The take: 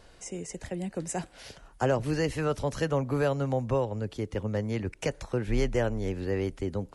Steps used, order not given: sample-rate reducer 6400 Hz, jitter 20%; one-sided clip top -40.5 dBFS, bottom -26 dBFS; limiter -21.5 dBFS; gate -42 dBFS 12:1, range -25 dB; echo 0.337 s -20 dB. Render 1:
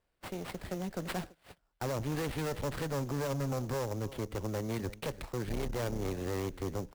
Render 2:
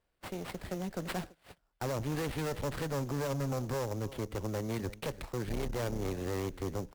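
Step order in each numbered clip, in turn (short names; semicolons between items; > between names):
limiter > echo > gate > one-sided clip > sample-rate reducer; limiter > echo > gate > sample-rate reducer > one-sided clip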